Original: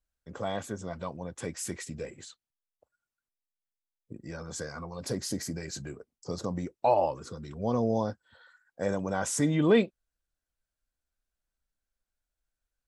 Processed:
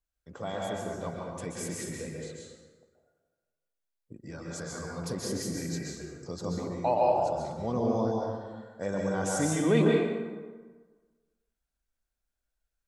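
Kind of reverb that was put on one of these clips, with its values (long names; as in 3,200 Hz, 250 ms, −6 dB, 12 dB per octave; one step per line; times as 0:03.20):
dense smooth reverb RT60 1.4 s, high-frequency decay 0.6×, pre-delay 115 ms, DRR −2 dB
level −3.5 dB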